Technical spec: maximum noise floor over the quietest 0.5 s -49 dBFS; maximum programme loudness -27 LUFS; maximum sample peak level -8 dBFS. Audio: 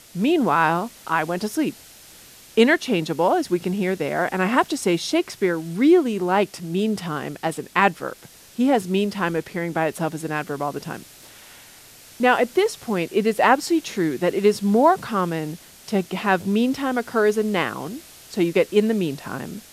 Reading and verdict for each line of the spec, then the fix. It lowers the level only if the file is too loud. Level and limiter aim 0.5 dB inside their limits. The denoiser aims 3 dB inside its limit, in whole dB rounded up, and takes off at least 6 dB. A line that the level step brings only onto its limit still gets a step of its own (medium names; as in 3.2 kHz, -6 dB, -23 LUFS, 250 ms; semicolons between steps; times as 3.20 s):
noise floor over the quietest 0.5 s -46 dBFS: fail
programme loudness -21.5 LUFS: fail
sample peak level -2.5 dBFS: fail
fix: trim -6 dB